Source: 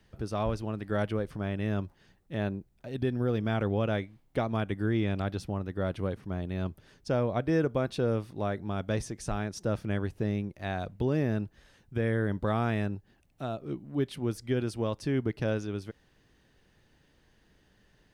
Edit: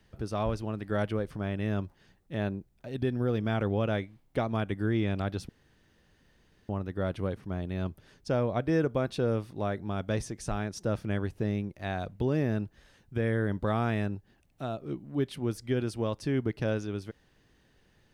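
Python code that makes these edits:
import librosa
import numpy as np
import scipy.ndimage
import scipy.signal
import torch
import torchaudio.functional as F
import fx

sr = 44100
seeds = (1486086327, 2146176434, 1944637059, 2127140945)

y = fx.edit(x, sr, fx.insert_room_tone(at_s=5.49, length_s=1.2), tone=tone)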